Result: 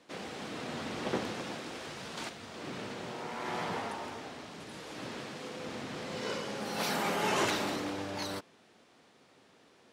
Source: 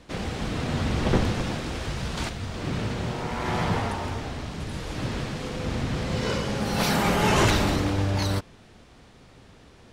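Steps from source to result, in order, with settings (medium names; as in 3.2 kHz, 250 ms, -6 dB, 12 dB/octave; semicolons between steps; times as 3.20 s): high-pass 260 Hz 12 dB/octave; trim -7.5 dB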